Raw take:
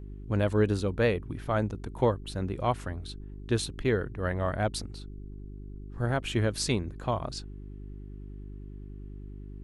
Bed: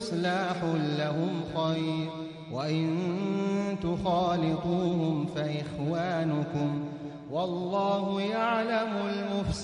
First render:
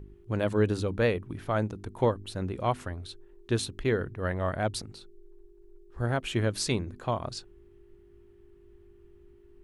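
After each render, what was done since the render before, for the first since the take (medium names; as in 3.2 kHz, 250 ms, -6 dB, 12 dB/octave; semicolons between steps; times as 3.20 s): de-hum 50 Hz, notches 6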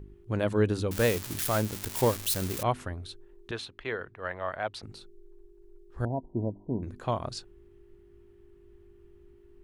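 0.91–2.63 s: zero-crossing glitches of -20.5 dBFS; 3.51–4.83 s: three-band isolator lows -15 dB, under 530 Hz, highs -17 dB, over 4.3 kHz; 6.05–6.83 s: rippled Chebyshev low-pass 990 Hz, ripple 6 dB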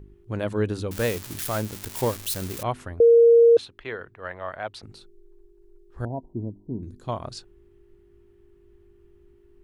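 3.00–3.57 s: bleep 466 Hz -10.5 dBFS; 6.33–7.09 s: high-order bell 1.2 kHz -12 dB 2.8 oct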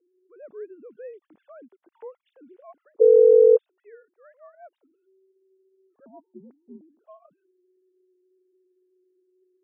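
formants replaced by sine waves; band-pass filter 370 Hz, Q 0.69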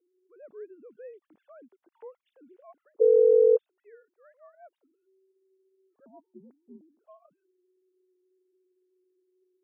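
trim -5 dB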